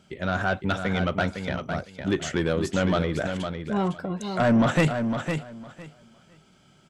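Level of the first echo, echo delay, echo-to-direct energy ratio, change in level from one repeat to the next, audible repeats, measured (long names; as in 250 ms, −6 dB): −7.0 dB, 507 ms, −7.0 dB, −15.0 dB, 2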